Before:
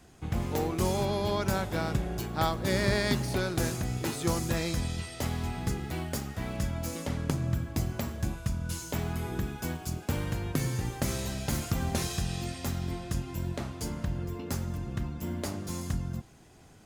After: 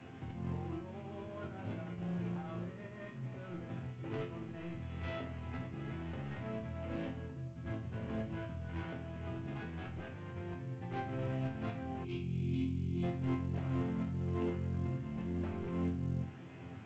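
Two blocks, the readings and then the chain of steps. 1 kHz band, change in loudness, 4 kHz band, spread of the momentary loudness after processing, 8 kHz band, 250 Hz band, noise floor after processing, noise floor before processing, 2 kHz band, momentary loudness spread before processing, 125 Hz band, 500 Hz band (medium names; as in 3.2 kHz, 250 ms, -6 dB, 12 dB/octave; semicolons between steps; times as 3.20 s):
-10.5 dB, -8.0 dB, -18.0 dB, 9 LU, under -30 dB, -5.0 dB, -48 dBFS, -53 dBFS, -11.5 dB, 6 LU, -6.5 dB, -9.0 dB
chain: CVSD coder 16 kbps; high-pass 100 Hz 24 dB/octave; bass shelf 290 Hz +10 dB; compressor with a negative ratio -35 dBFS, ratio -1; saturation -29.5 dBFS, distortion -13 dB; chord resonator F2 major, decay 0.43 s; time-frequency box 12.04–13.03 s, 420–2100 Hz -19 dB; trim +10 dB; A-law 128 kbps 16 kHz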